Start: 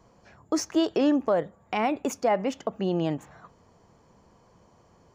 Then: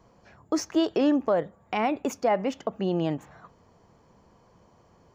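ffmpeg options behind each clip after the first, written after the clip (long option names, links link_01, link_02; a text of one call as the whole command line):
ffmpeg -i in.wav -af "equalizer=frequency=9500:width_type=o:width=0.93:gain=-6" out.wav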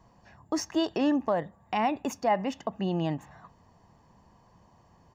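ffmpeg -i in.wav -af "aecho=1:1:1.1:0.46,volume=-2dB" out.wav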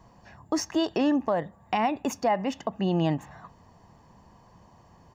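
ffmpeg -i in.wav -af "alimiter=limit=-20dB:level=0:latency=1:release=343,volume=4.5dB" out.wav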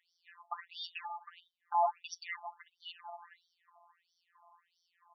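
ffmpeg -i in.wav -af "afftfilt=real='hypot(re,im)*cos(PI*b)':imag='0':win_size=1024:overlap=0.75,afftfilt=real='re*between(b*sr/1024,890*pow(4400/890,0.5+0.5*sin(2*PI*1.5*pts/sr))/1.41,890*pow(4400/890,0.5+0.5*sin(2*PI*1.5*pts/sr))*1.41)':imag='im*between(b*sr/1024,890*pow(4400/890,0.5+0.5*sin(2*PI*1.5*pts/sr))/1.41,890*pow(4400/890,0.5+0.5*sin(2*PI*1.5*pts/sr))*1.41)':win_size=1024:overlap=0.75,volume=1dB" out.wav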